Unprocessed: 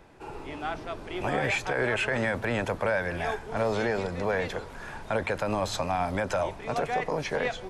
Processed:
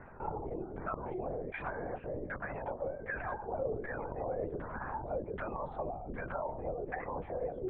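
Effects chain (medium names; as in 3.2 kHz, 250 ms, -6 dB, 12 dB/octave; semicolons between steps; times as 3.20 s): spectral gate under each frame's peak -20 dB strong; 2.32–4.37 s: bass shelf 380 Hz -10 dB; peak limiter -28.5 dBFS, peak gain reduction 12 dB; compression, threshold -38 dBFS, peak gain reduction 6 dB; LFO low-pass saw down 1.3 Hz 340–1800 Hz; LPC vocoder at 8 kHz whisper; transformer saturation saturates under 140 Hz; trim +1 dB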